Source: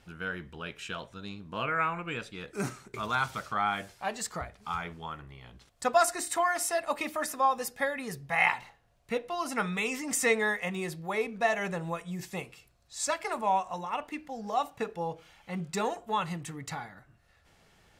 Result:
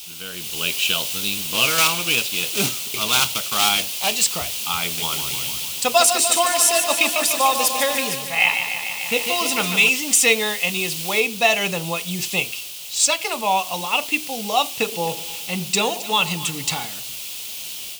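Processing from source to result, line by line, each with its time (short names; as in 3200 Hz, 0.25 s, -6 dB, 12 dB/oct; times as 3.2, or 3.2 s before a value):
1.41–4.25 block floating point 3-bit
4.83–9.89 warbling echo 0.148 s, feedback 72%, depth 53 cents, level -8 dB
11.2 noise floor step -45 dB -51 dB
14.74–16.85 split-band echo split 1000 Hz, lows 0.119 s, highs 0.267 s, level -15 dB
whole clip: HPF 130 Hz 6 dB/oct; resonant high shelf 2200 Hz +8 dB, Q 3; AGC gain up to 11.5 dB; gain -1 dB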